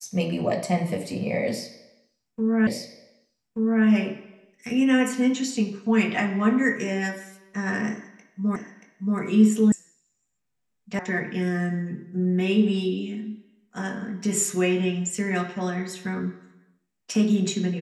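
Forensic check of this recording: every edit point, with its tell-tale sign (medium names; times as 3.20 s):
2.67 s: repeat of the last 1.18 s
8.56 s: repeat of the last 0.63 s
9.72 s: sound stops dead
10.99 s: sound stops dead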